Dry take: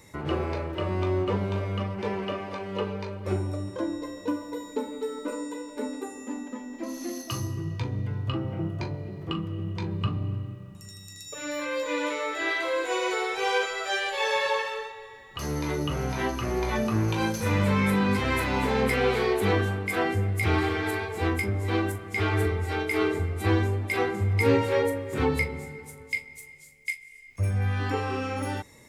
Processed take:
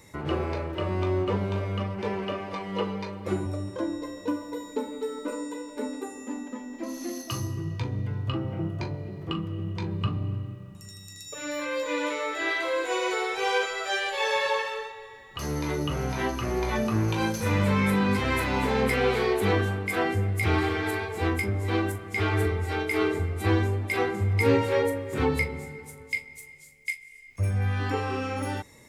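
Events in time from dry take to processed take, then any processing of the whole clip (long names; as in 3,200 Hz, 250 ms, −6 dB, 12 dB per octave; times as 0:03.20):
0:02.53–0:03.46: comb filter 6.1 ms, depth 70%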